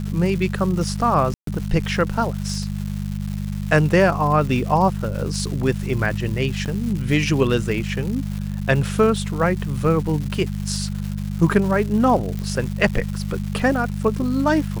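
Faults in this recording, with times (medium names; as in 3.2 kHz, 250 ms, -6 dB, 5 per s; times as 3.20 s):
crackle 390 per s -29 dBFS
hum 50 Hz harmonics 4 -26 dBFS
1.34–1.47 s: dropout 133 ms
6.65–6.66 s: dropout 7.8 ms
12.39 s: pop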